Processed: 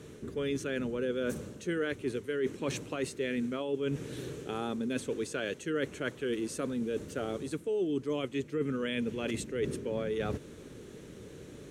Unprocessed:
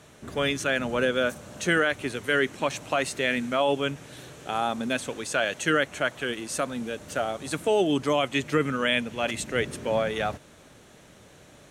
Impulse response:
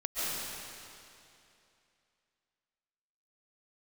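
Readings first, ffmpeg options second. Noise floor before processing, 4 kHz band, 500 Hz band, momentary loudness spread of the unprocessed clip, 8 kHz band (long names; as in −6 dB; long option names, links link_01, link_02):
−53 dBFS, −12.5 dB, −6.0 dB, 7 LU, −9.5 dB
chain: -af "lowshelf=frequency=540:width_type=q:width=3:gain=7,areverse,acompressor=threshold=-28dB:ratio=6,areverse,volume=-2.5dB"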